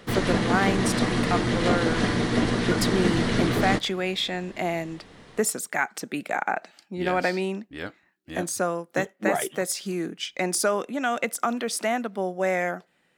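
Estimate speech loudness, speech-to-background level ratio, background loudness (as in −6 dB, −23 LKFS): −27.5 LKFS, −3.0 dB, −24.5 LKFS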